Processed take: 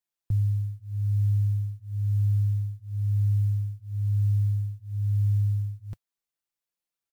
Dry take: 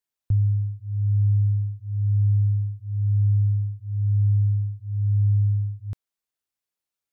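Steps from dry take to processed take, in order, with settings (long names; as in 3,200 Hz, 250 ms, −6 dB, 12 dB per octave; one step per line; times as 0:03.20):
comb filter 5.9 ms, depth 44%
noise that follows the level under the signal 35 dB
dynamic equaliser 100 Hz, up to +3 dB, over −32 dBFS, Q 5.4
level −3.5 dB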